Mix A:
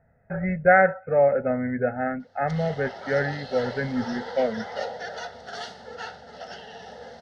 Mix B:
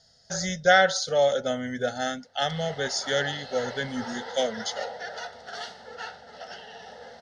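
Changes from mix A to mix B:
speech: remove brick-wall FIR low-pass 2600 Hz; master: add low shelf 470 Hz -7 dB

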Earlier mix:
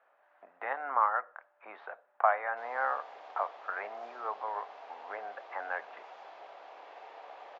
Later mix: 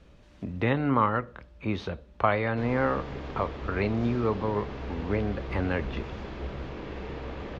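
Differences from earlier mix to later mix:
speech: remove synth low-pass 1600 Hz, resonance Q 2.8; master: remove ladder high-pass 660 Hz, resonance 65%

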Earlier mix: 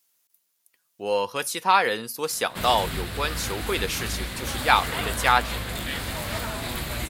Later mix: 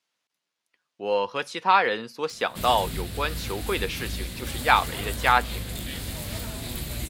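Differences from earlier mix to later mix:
speech: add BPF 120–3800 Hz; background: add bell 1200 Hz -11.5 dB 2.3 oct

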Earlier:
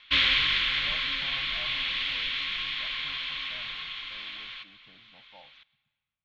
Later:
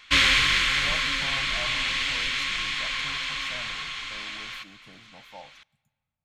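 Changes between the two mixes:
background: send -8.5 dB; master: remove ladder low-pass 4100 Hz, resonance 50%

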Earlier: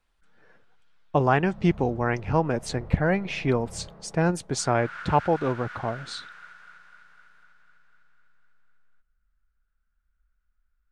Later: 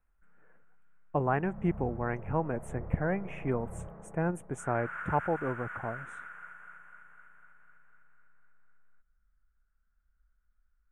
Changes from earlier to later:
speech -7.5 dB; master: add Butterworth band-stop 4500 Hz, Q 0.64

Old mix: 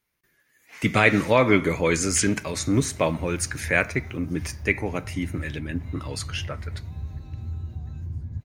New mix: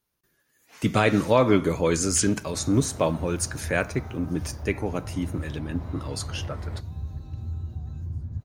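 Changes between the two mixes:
second sound +11.0 dB; master: add bell 2100 Hz -11 dB 0.63 oct

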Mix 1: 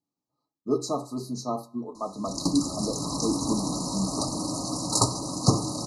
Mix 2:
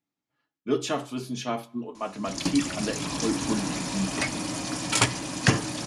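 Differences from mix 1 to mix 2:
background: send -10.5 dB; master: remove brick-wall FIR band-stop 1300–3800 Hz

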